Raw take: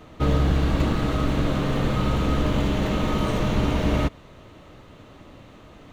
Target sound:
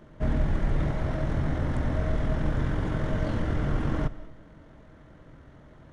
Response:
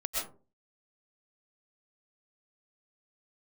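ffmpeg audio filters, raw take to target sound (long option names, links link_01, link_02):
-filter_complex "[0:a]asetrate=22050,aresample=44100,atempo=2,bandreject=frequency=50:width_type=h:width=6,bandreject=frequency=100:width_type=h:width=6,asplit=2[link_01][link_02];[1:a]atrim=start_sample=2205,adelay=61[link_03];[link_02][link_03]afir=irnorm=-1:irlink=0,volume=-22dB[link_04];[link_01][link_04]amix=inputs=2:normalize=0,volume=-3dB"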